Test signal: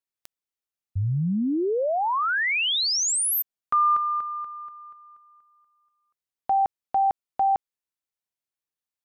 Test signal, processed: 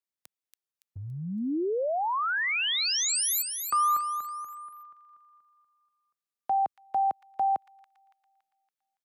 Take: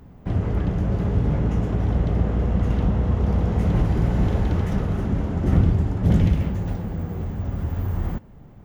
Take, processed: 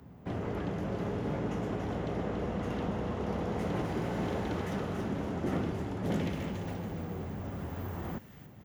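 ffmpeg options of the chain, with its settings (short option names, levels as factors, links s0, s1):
-filter_complex "[0:a]highpass=91,acrossover=split=240|1600[s0][s1][s2];[s0]acompressor=threshold=0.0224:ratio=6:attack=0.47:release=90:knee=1:detection=rms[s3];[s2]aecho=1:1:282|564|846|1128|1410:0.447|0.201|0.0905|0.0407|0.0183[s4];[s3][s1][s4]amix=inputs=3:normalize=0,volume=0.631"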